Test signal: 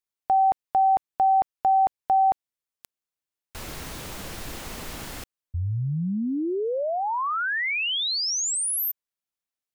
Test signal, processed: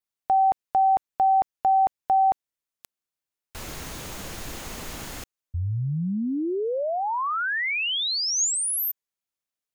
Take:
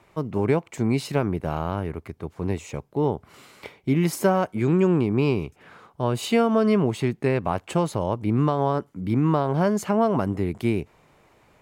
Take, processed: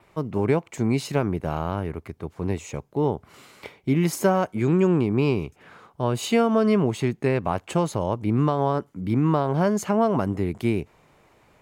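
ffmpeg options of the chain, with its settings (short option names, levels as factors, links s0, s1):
-af "adynamicequalizer=threshold=0.00141:dfrequency=6600:dqfactor=7.4:tfrequency=6600:tqfactor=7.4:attack=5:release=100:ratio=0.375:range=2.5:mode=boostabove:tftype=bell"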